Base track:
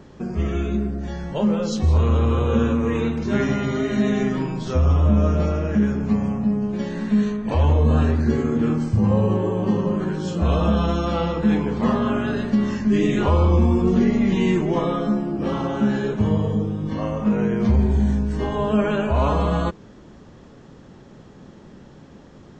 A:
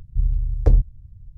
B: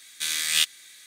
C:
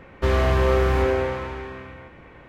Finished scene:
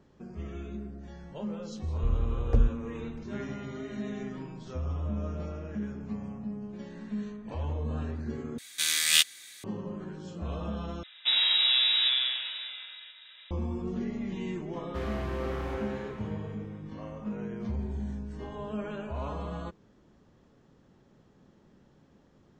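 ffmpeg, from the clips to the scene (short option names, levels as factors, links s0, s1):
-filter_complex "[3:a]asplit=2[s0][s1];[0:a]volume=0.158[s2];[s0]lowpass=f=3300:t=q:w=0.5098,lowpass=f=3300:t=q:w=0.6013,lowpass=f=3300:t=q:w=0.9,lowpass=f=3300:t=q:w=2.563,afreqshift=-3900[s3];[s2]asplit=3[s4][s5][s6];[s4]atrim=end=8.584[s7];[2:a]atrim=end=1.06[s8];[s5]atrim=start=9.636:end=11.034[s9];[s3]atrim=end=2.48,asetpts=PTS-STARTPTS,volume=0.501[s10];[s6]atrim=start=13.506[s11];[1:a]atrim=end=1.37,asetpts=PTS-STARTPTS,volume=0.398,afade=t=in:d=0.004:c=hsin,afade=t=out:st=1.366:d=0.004:c=hsin,adelay=1870[s12];[s1]atrim=end=2.48,asetpts=PTS-STARTPTS,volume=0.178,afade=t=in:d=0.004:c=hsin,afade=t=out:st=2.476:d=0.004:c=hsin,adelay=14720[s13];[s7][s8]acrossfade=d=0.004:c1=hsin:c2=hsin[s14];[s14][s9]acrossfade=d=0.004:c1=hsin:c2=hsin[s15];[s15][s10]acrossfade=d=0.004:c1=hsin:c2=hsin[s16];[s16][s11]acrossfade=d=0.004:c1=hsin:c2=hsin[s17];[s17][s12][s13]amix=inputs=3:normalize=0"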